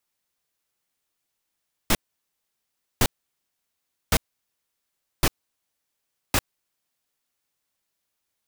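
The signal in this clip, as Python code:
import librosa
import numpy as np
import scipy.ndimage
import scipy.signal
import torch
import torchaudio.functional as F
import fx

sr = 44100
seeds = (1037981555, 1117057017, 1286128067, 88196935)

y = fx.noise_burst(sr, seeds[0], colour='pink', on_s=0.05, off_s=1.06, bursts=5, level_db=-18.5)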